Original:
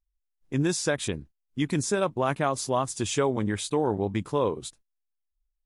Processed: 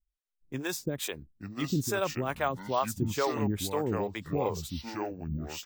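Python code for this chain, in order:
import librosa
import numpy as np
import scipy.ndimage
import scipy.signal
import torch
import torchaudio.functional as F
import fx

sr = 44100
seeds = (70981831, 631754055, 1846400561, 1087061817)

y = fx.harmonic_tremolo(x, sr, hz=2.3, depth_pct=100, crossover_hz=420.0)
y = fx.echo_pitch(y, sr, ms=711, semitones=-5, count=2, db_per_echo=-6.0)
y = np.repeat(scipy.signal.resample_poly(y, 1, 2), 2)[:len(y)]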